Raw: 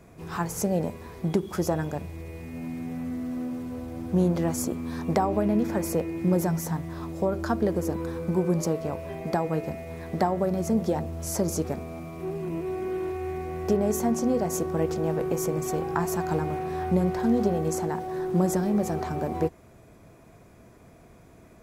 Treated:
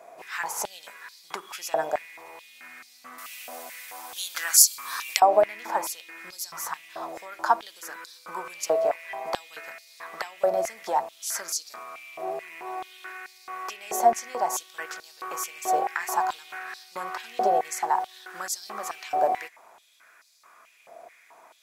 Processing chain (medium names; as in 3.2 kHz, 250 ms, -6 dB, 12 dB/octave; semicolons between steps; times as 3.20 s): 3.18–5.20 s: tilt EQ +4.5 dB/octave; step-sequenced high-pass 4.6 Hz 680–4500 Hz; trim +2 dB